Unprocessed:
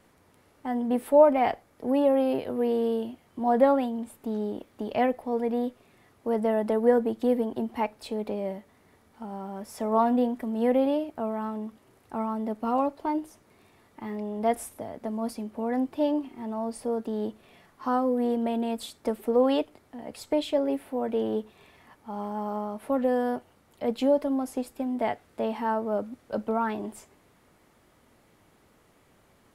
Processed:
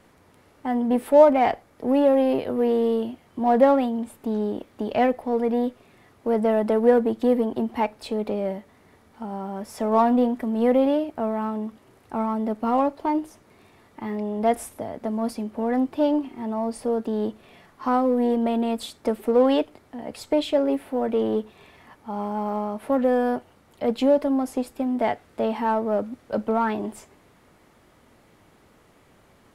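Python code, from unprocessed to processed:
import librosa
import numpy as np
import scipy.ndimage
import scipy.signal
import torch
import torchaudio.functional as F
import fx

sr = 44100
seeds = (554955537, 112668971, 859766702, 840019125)

p1 = fx.high_shelf(x, sr, hz=7600.0, db=-5.0)
p2 = np.clip(10.0 ** (26.5 / 20.0) * p1, -1.0, 1.0) / 10.0 ** (26.5 / 20.0)
p3 = p1 + F.gain(torch.from_numpy(p2), -11.0).numpy()
y = F.gain(torch.from_numpy(p3), 3.0).numpy()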